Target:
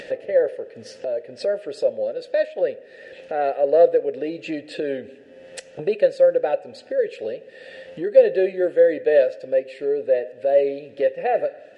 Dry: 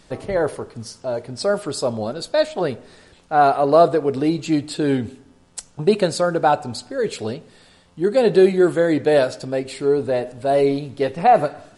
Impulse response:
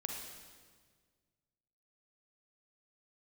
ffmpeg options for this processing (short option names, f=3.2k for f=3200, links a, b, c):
-filter_complex "[0:a]aeval=exprs='0.794*(cos(1*acos(clip(val(0)/0.794,-1,1)))-cos(1*PI/2))+0.0562*(cos(2*acos(clip(val(0)/0.794,-1,1)))-cos(2*PI/2))':c=same,asplit=3[a][b][c];[a]bandpass=f=530:t=q:w=8,volume=0dB[d];[b]bandpass=f=1.84k:t=q:w=8,volume=-6dB[e];[c]bandpass=f=2.48k:t=q:w=8,volume=-9dB[f];[d][e][f]amix=inputs=3:normalize=0,acompressor=mode=upward:threshold=-28dB:ratio=2.5,volume=6dB"